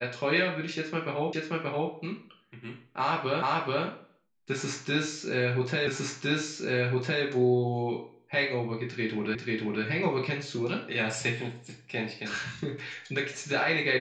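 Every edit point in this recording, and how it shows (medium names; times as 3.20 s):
1.33 s: repeat of the last 0.58 s
3.42 s: repeat of the last 0.43 s
5.87 s: repeat of the last 1.36 s
9.35 s: repeat of the last 0.49 s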